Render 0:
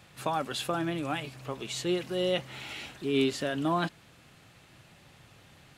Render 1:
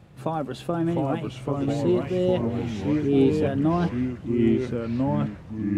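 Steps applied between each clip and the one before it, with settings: ever faster or slower copies 654 ms, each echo -3 st, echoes 3; tilt shelf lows +9.5 dB, about 910 Hz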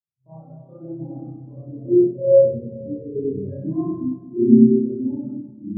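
spring tank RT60 2.6 s, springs 31/51 ms, chirp 30 ms, DRR -10 dB; spectral contrast expander 2.5:1; trim -2 dB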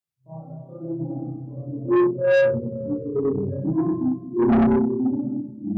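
saturation -18 dBFS, distortion -6 dB; trim +3.5 dB

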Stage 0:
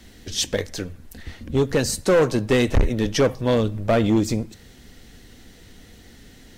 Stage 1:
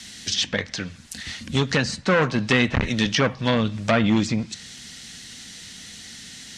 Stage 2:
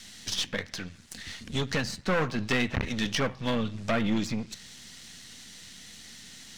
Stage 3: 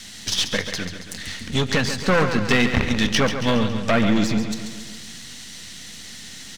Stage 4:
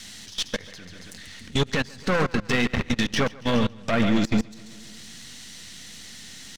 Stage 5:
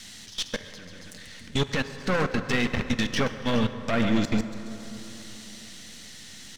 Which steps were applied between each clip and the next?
frequency weighting ITU-R 468; low-pass that closes with the level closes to 2 kHz, closed at -19.5 dBFS; resonant low shelf 270 Hz +12 dB, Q 1.5; trim +3.5 dB
partial rectifier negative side -7 dB; trim -4.5 dB
feedback delay 138 ms, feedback 58%, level -9 dB; trim +8 dB
level held to a coarse grid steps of 21 dB; peak limiter -18 dBFS, peak gain reduction 11 dB; upward expansion 1.5:1, over -37 dBFS; trim +6.5 dB
plate-style reverb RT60 4.3 s, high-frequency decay 0.45×, DRR 10.5 dB; trim -2.5 dB

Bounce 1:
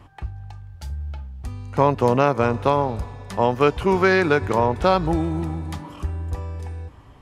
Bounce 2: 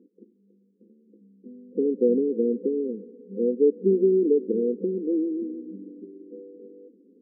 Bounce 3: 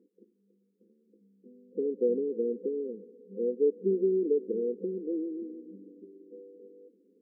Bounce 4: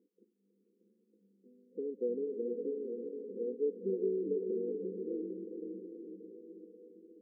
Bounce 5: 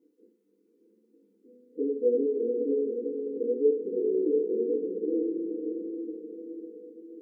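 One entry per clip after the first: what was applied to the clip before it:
FFT band-pass 190–520 Hz
peaking EQ 250 Hz -8 dB 0.93 oct; trim -3.5 dB
echo that smears into a reverb 479 ms, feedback 53%, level -4.5 dB; trim -8 dB
FDN reverb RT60 0.45 s, low-frequency decay 0.9×, high-frequency decay 0.4×, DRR -6 dB

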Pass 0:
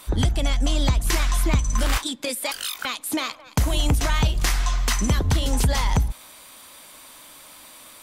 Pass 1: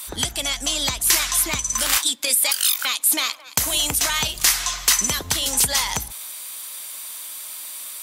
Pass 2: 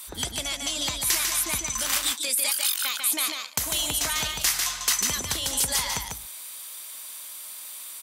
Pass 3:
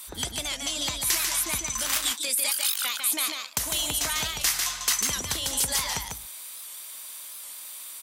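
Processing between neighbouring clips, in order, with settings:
tilt EQ +4 dB/octave
delay 147 ms -4.5 dB; trim -6.5 dB
warped record 78 rpm, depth 100 cents; trim -1 dB

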